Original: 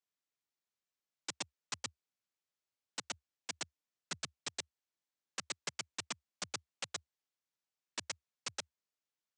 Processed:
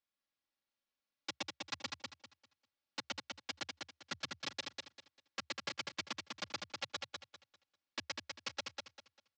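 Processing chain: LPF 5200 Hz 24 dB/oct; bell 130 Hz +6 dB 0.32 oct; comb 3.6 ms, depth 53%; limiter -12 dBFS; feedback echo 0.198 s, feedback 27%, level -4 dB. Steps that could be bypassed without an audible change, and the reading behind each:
limiter -12 dBFS: input peak -24.0 dBFS

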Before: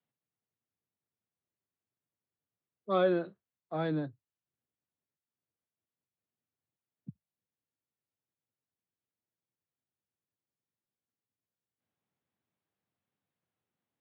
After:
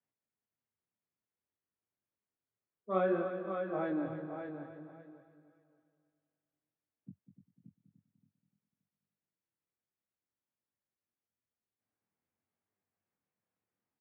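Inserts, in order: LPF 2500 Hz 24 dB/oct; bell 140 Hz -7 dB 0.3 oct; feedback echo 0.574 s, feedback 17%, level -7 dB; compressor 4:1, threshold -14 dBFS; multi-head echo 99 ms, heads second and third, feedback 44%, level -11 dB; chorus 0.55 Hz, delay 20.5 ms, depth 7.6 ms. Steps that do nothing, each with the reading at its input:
compressor, threshold -14 dBFS: input peak -16.5 dBFS

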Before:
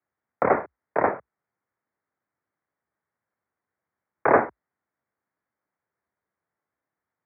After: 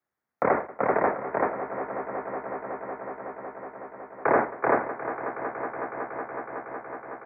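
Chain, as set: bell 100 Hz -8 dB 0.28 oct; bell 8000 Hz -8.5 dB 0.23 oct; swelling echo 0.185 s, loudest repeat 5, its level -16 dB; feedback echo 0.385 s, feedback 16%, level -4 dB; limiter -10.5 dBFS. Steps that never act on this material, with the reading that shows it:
bell 8000 Hz: input band ends at 2400 Hz

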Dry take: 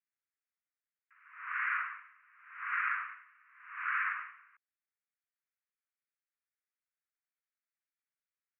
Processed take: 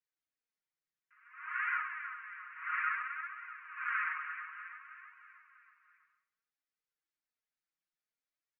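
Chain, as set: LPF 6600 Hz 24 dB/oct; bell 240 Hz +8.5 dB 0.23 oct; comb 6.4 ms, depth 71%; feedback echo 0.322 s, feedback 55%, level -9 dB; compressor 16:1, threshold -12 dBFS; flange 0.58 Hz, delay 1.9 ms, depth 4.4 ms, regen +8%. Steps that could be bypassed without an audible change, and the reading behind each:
LPF 6600 Hz: input band ends at 2900 Hz; bell 240 Hz: input band starts at 910 Hz; compressor, threshold -12 dBFS: input peak -18.5 dBFS

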